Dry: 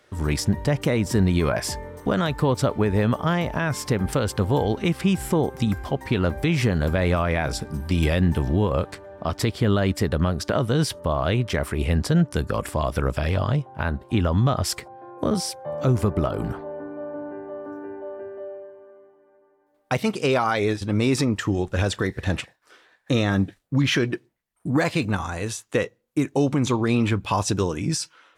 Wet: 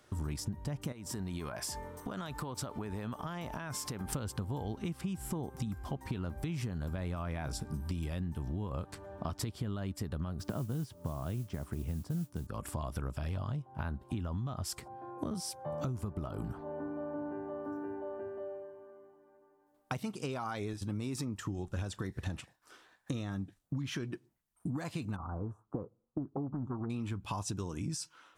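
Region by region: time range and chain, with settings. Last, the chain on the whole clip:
0:00.92–0:04.12: low-shelf EQ 270 Hz −10 dB + downward compressor, threshold −31 dBFS
0:10.39–0:12.47: high-pass filter 100 Hz + spectral tilt −2.5 dB per octave + noise that follows the level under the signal 22 dB
0:20.73–0:21.41: high-pass filter 52 Hz + high-shelf EQ 12,000 Hz +8 dB
0:25.16–0:26.90: elliptic low-pass filter 1,300 Hz + highs frequency-modulated by the lows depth 0.37 ms
whole clip: octave-band graphic EQ 500/2,000/4,000 Hz −8/−8/−4 dB; downward compressor 10 to 1, threshold −34 dBFS

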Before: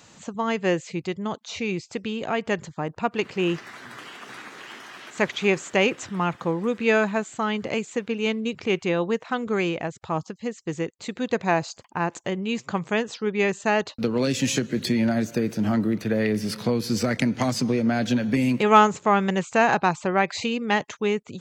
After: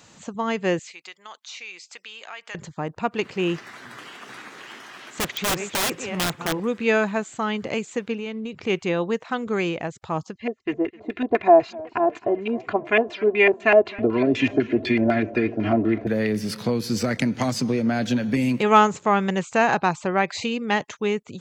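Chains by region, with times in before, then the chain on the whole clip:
0:00.79–0:02.55: high-pass filter 1,300 Hz + downward compressor 2 to 1, threshold −36 dBFS
0:04.76–0:06.60: feedback delay that plays each chunk backwards 199 ms, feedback 40%, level −12.5 dB + wrap-around overflow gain 17.5 dB
0:08.15–0:08.64: high-shelf EQ 5,400 Hz −8 dB + downward compressor, threshold −27 dBFS
0:10.35–0:16.07: auto-filter low-pass square 4 Hz 650–2,400 Hz + comb filter 2.9 ms, depth 94% + feedback echo with a swinging delay time 260 ms, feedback 71%, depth 112 cents, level −22 dB
whole clip: no processing

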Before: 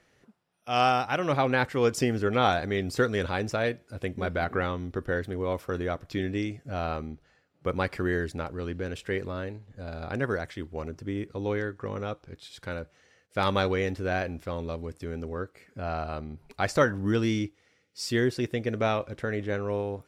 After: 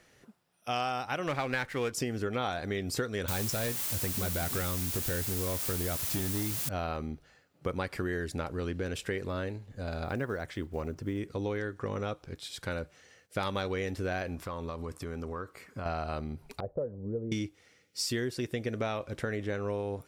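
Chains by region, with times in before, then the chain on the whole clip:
0:01.27–0:01.92: parametric band 2,000 Hz +7.5 dB 1.1 octaves + windowed peak hold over 3 samples
0:03.28–0:06.69: bass and treble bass +8 dB, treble +9 dB + hard clipping −21 dBFS + bit-depth reduction 6 bits, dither triangular
0:10.04–0:11.18: one scale factor per block 7 bits + high-shelf EQ 3,600 Hz −7.5 dB
0:14.35–0:15.86: parametric band 1,100 Hz +10 dB 0.58 octaves + downward compressor 5 to 1, threshold −36 dBFS
0:16.60–0:17.32: transistor ladder low-pass 560 Hz, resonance 55% + parametric band 310 Hz −9.5 dB 0.67 octaves
whole clip: high-shelf EQ 6,000 Hz +8 dB; downward compressor 5 to 1, threshold −32 dBFS; level +2 dB

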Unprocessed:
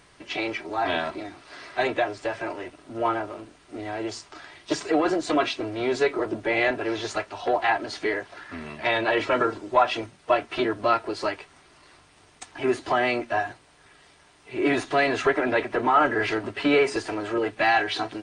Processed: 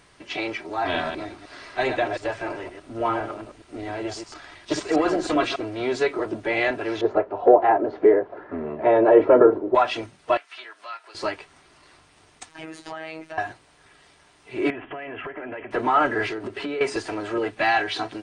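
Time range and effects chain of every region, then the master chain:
0:00.84–0:05.56: delay that plays each chunk backwards 103 ms, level −7 dB + low-shelf EQ 76 Hz +9 dB
0:07.01–0:09.75: low-pass filter 1,200 Hz + parametric band 450 Hz +13.5 dB 1.5 octaves
0:10.37–0:11.15: high-pass filter 1,300 Hz + downward compressor 1.5 to 1, threshold −49 dBFS + one half of a high-frequency compander encoder only
0:12.49–0:13.38: high-shelf EQ 6,800 Hz +6 dB + downward compressor 3 to 1, threshold −32 dBFS + phases set to zero 159 Hz
0:14.70–0:15.71: Chebyshev low-pass filter 3,200 Hz, order 8 + downward compressor 16 to 1, threshold −30 dBFS
0:16.27–0:16.81: parametric band 380 Hz +8.5 dB 0.48 octaves + downward compressor, threshold −27 dBFS
whole clip: no processing

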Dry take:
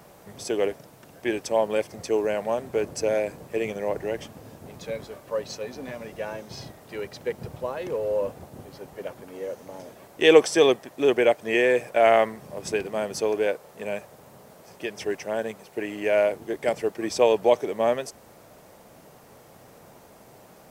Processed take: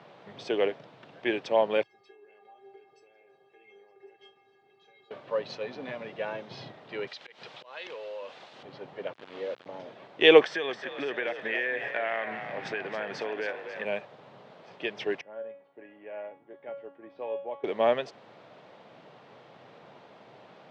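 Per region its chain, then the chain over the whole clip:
0:01.83–0:05.11: downward compressor 5 to 1, threshold −32 dBFS + stiff-string resonator 390 Hz, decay 0.32 s, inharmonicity 0.008 + echo through a band-pass that steps 183 ms, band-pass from 570 Hz, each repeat 0.7 octaves, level −5.5 dB
0:07.07–0:08.63: meter weighting curve ITU-R 468 + downward compressor 2.5 to 1, threshold −38 dBFS + volume swells 150 ms
0:09.13–0:09.66: parametric band 94 Hz −7 dB 0.92 octaves + centre clipping without the shift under −40.5 dBFS
0:10.41–0:13.85: parametric band 1,700 Hz +12.5 dB 0.64 octaves + downward compressor 4 to 1, threshold −29 dBFS + echo with shifted repeats 272 ms, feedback 56%, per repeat +53 Hz, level −9 dB
0:15.21–0:17.64: low-pass filter 1,500 Hz + tuned comb filter 280 Hz, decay 0.45 s, mix 90%
whole clip: elliptic band-pass filter 120–3,600 Hz, stop band 60 dB; spectral tilt +1.5 dB per octave

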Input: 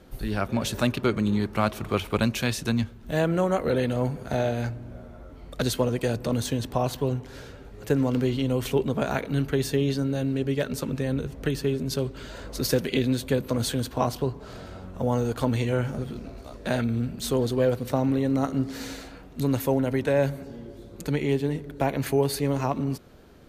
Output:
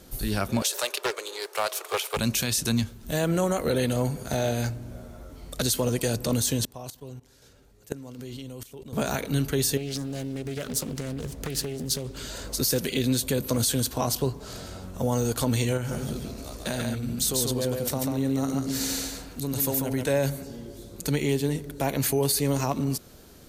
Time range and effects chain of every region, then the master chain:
0:00.62–0:02.17: Butterworth high-pass 410 Hz 48 dB per octave + highs frequency-modulated by the lows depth 0.22 ms
0:06.65–0:08.93: noise gate −30 dBFS, range −7 dB + output level in coarse steps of 19 dB + shaped tremolo saw down 1.3 Hz, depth 40%
0:09.77–0:12.18: downward compressor 8 to 1, threshold −28 dBFS + highs frequency-modulated by the lows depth 0.48 ms
0:15.77–0:20.05: downward compressor 3 to 1, threshold −27 dBFS + single-tap delay 141 ms −3.5 dB
whole clip: bass and treble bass +1 dB, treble +15 dB; brickwall limiter −14.5 dBFS

